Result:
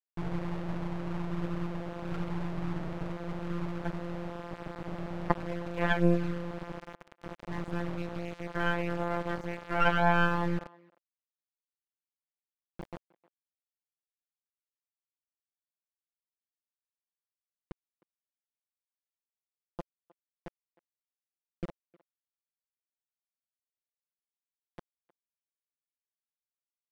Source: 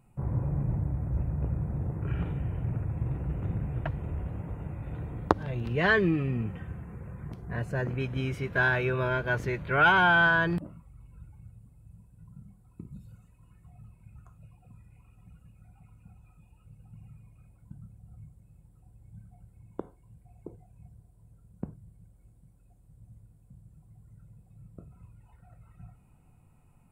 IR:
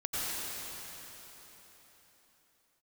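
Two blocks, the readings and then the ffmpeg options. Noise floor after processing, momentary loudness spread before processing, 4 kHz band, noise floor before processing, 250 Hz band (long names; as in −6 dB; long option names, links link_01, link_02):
below −85 dBFS, 20 LU, −5.5 dB, −60 dBFS, 0.0 dB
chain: -filter_complex "[0:a]flanger=delay=0.8:depth=5.6:regen=4:speed=0.39:shape=sinusoidal,afftfilt=real='hypot(re,im)*cos(PI*b)':imag='0':win_size=1024:overlap=0.75,acrusher=bits=4:dc=4:mix=0:aa=0.000001,adynamicequalizer=threshold=0.00178:dfrequency=580:dqfactor=4.9:tfrequency=580:tqfactor=4.9:attack=5:release=100:ratio=0.375:range=2.5:mode=boostabove:tftype=bell,lowpass=frequency=2300:poles=1,asplit=2[link_01][link_02];[link_02]adelay=310,highpass=300,lowpass=3400,asoftclip=type=hard:threshold=-18.5dB,volume=-23dB[link_03];[link_01][link_03]amix=inputs=2:normalize=0,acontrast=26,aemphasis=mode=reproduction:type=cd"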